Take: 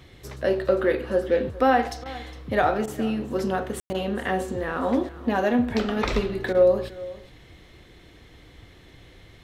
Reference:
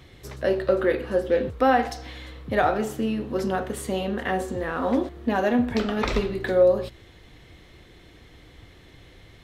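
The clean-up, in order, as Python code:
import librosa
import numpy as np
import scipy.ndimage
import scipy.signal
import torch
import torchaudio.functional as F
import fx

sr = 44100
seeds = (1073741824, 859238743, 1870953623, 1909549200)

y = fx.fix_ambience(x, sr, seeds[0], print_start_s=7.82, print_end_s=8.32, start_s=3.8, end_s=3.9)
y = fx.fix_interpolate(y, sr, at_s=(2.04, 2.86, 3.93, 6.53), length_ms=15.0)
y = fx.fix_echo_inverse(y, sr, delay_ms=410, level_db=-18.0)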